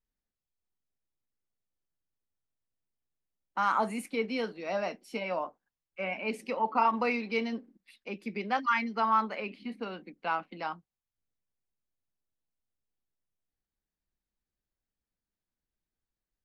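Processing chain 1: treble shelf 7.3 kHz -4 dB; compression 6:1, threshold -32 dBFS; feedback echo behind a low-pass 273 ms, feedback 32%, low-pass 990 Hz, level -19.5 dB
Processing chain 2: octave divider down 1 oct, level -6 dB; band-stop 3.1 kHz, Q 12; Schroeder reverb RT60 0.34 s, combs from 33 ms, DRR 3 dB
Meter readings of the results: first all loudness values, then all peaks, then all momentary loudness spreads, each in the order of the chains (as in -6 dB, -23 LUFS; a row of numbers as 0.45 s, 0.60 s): -38.0 LUFS, -30.0 LUFS; -23.0 dBFS, -11.5 dBFS; 7 LU, 13 LU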